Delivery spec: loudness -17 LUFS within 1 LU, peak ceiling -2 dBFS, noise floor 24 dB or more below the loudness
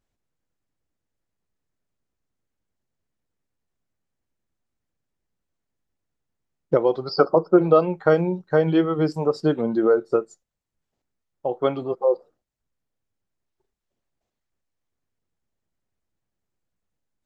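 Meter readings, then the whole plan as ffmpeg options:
loudness -21.5 LUFS; peak -3.5 dBFS; loudness target -17.0 LUFS
-> -af "volume=4.5dB,alimiter=limit=-2dB:level=0:latency=1"

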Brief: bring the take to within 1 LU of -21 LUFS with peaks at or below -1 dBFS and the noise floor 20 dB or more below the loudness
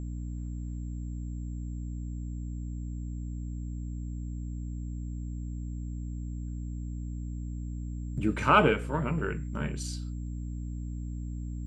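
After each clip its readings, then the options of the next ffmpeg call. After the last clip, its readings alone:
hum 60 Hz; harmonics up to 300 Hz; hum level -33 dBFS; steady tone 7500 Hz; tone level -63 dBFS; loudness -34.0 LUFS; peak -8.0 dBFS; loudness target -21.0 LUFS
-> -af "bandreject=f=60:t=h:w=4,bandreject=f=120:t=h:w=4,bandreject=f=180:t=h:w=4,bandreject=f=240:t=h:w=4,bandreject=f=300:t=h:w=4"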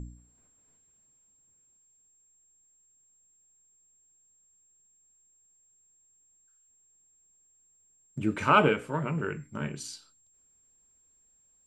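hum none; steady tone 7500 Hz; tone level -63 dBFS
-> -af "bandreject=f=7.5k:w=30"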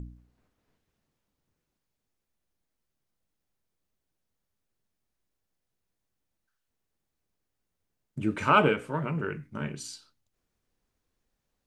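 steady tone none; loudness -27.5 LUFS; peak -8.0 dBFS; loudness target -21.0 LUFS
-> -af "volume=6.5dB"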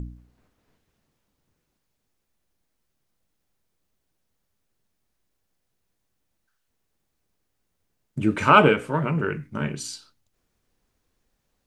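loudness -21.0 LUFS; peak -1.5 dBFS; noise floor -76 dBFS

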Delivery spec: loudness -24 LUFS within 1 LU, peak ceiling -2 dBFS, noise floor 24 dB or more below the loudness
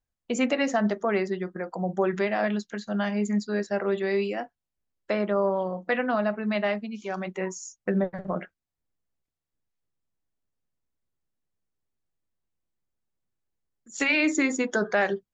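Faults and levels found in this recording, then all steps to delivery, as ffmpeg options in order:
loudness -27.0 LUFS; peak -10.5 dBFS; loudness target -24.0 LUFS
-> -af "volume=3dB"

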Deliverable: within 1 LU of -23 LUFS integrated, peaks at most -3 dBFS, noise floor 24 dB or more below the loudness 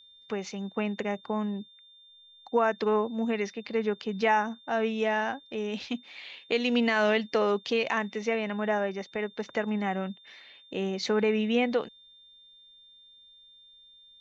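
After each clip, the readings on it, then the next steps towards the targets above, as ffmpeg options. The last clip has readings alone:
steady tone 3600 Hz; tone level -53 dBFS; loudness -29.0 LUFS; peak -12.5 dBFS; loudness target -23.0 LUFS
-> -af "bandreject=f=3.6k:w=30"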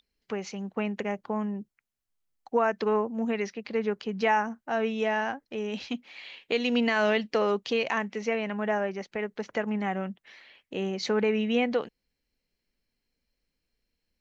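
steady tone none; loudness -29.0 LUFS; peak -13.0 dBFS; loudness target -23.0 LUFS
-> -af "volume=6dB"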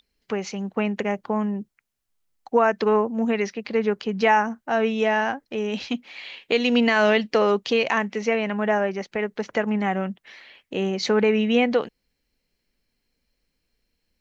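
loudness -23.0 LUFS; peak -7.0 dBFS; noise floor -78 dBFS

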